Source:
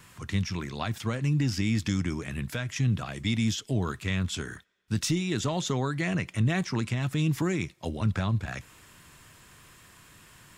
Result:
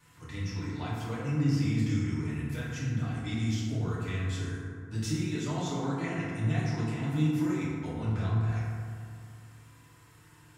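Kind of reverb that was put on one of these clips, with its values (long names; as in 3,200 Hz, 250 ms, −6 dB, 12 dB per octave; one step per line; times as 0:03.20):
feedback delay network reverb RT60 2.3 s, low-frequency decay 1.1×, high-frequency decay 0.35×, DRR −9.5 dB
level −14.5 dB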